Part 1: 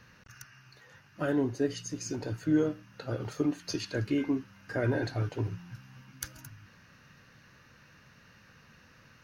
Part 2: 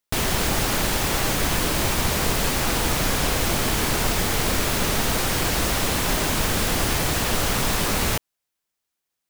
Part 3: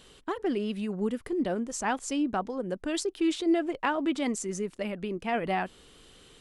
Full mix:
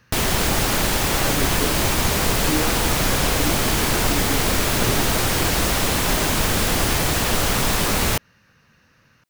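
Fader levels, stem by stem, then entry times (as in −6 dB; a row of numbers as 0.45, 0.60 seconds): 0.0 dB, +2.5 dB, muted; 0.00 s, 0.00 s, muted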